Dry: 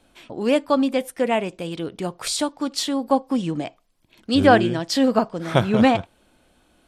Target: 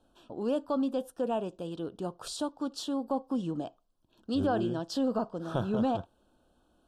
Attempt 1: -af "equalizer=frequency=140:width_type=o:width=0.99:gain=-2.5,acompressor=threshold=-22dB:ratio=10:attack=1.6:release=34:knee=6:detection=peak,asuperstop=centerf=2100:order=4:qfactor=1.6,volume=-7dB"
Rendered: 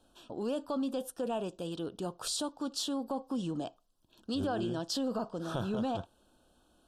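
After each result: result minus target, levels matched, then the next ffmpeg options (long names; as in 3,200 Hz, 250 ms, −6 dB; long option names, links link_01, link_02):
4,000 Hz band +6.5 dB; downward compressor: peak gain reduction +6 dB
-af "equalizer=frequency=140:width_type=o:width=0.99:gain=-2.5,acompressor=threshold=-22dB:ratio=10:attack=1.6:release=34:knee=6:detection=peak,asuperstop=centerf=2100:order=4:qfactor=1.6,highshelf=frequency=2500:gain=-8.5,volume=-7dB"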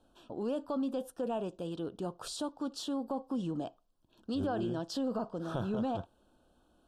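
downward compressor: peak gain reduction +6 dB
-af "equalizer=frequency=140:width_type=o:width=0.99:gain=-2.5,acompressor=threshold=-15.5dB:ratio=10:attack=1.6:release=34:knee=6:detection=peak,asuperstop=centerf=2100:order=4:qfactor=1.6,highshelf=frequency=2500:gain=-8.5,volume=-7dB"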